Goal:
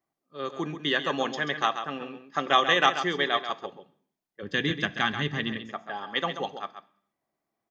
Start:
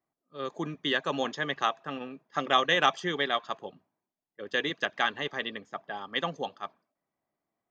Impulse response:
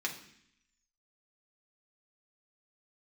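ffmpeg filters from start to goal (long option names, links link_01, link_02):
-filter_complex "[0:a]asplit=3[link_01][link_02][link_03];[link_01]afade=type=out:start_time=4.42:duration=0.02[link_04];[link_02]asubboost=boost=10.5:cutoff=170,afade=type=in:start_time=4.42:duration=0.02,afade=type=out:start_time=5.57:duration=0.02[link_05];[link_03]afade=type=in:start_time=5.57:duration=0.02[link_06];[link_04][link_05][link_06]amix=inputs=3:normalize=0,aecho=1:1:135:0.335,asplit=2[link_07][link_08];[1:a]atrim=start_sample=2205,afade=type=out:start_time=0.39:duration=0.01,atrim=end_sample=17640[link_09];[link_08][link_09]afir=irnorm=-1:irlink=0,volume=-11.5dB[link_10];[link_07][link_10]amix=inputs=2:normalize=0"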